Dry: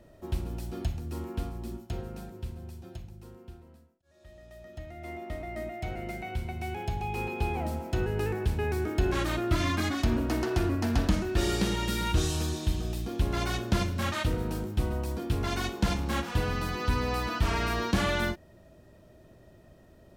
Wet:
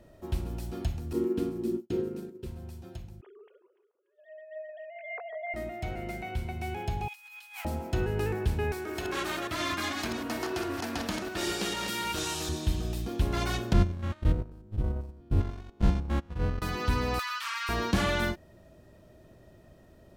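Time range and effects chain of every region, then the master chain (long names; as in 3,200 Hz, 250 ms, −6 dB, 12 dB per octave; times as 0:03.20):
0:01.13–0:02.46: downward expander −37 dBFS + high-pass filter 220 Hz + low shelf with overshoot 520 Hz +8.5 dB, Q 3
0:03.21–0:05.54: three sine waves on the formant tracks + noise gate −60 dBFS, range −14 dB + delay that swaps between a low-pass and a high-pass 145 ms, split 1,300 Hz, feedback 65%, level −11 dB
0:07.08–0:07.65: Bessel high-pass filter 1,700 Hz, order 6 + spectral tilt +2.5 dB per octave + compressor whose output falls as the input rises −45 dBFS, ratio −0.5
0:08.72–0:12.49: delay that plays each chunk backwards 151 ms, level −4.5 dB + high-pass filter 570 Hz 6 dB per octave
0:13.73–0:16.62: spectrum averaged block by block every 100 ms + noise gate −30 dBFS, range −23 dB + spectral tilt −2.5 dB per octave
0:17.19–0:17.69: elliptic high-pass filter 1,100 Hz, stop band 70 dB + multiband upward and downward compressor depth 100%
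whole clip: no processing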